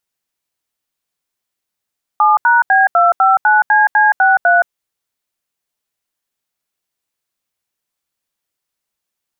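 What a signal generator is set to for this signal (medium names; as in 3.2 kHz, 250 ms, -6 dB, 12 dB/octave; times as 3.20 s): DTMF "7#B259CC63", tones 171 ms, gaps 79 ms, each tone -10 dBFS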